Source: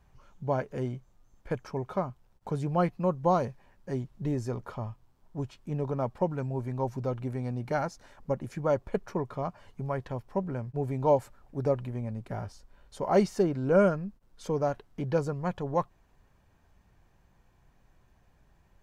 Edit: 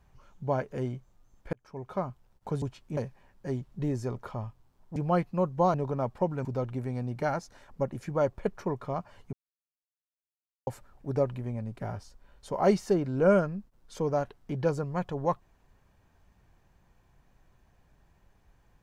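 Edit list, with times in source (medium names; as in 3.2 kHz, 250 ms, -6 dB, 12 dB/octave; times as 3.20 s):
1.53–2.08 s: fade in
2.62–3.40 s: swap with 5.39–5.74 s
6.45–6.94 s: delete
9.82–11.16 s: mute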